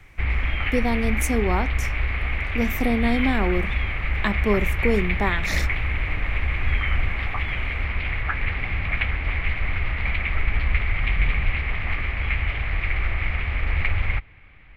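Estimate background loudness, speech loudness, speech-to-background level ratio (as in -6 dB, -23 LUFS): -25.5 LUFS, -25.5 LUFS, 0.0 dB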